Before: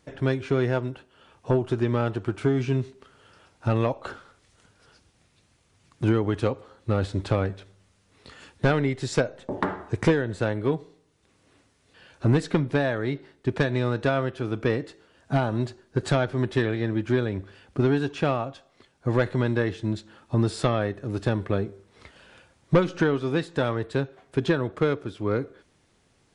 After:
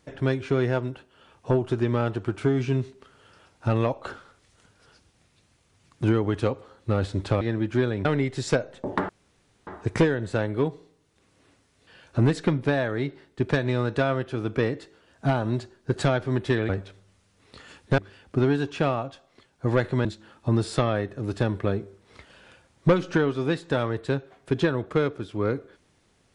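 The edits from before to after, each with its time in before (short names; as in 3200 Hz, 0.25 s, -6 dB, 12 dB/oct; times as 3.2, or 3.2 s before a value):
7.41–8.7 swap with 16.76–17.4
9.74 insert room tone 0.58 s
19.47–19.91 cut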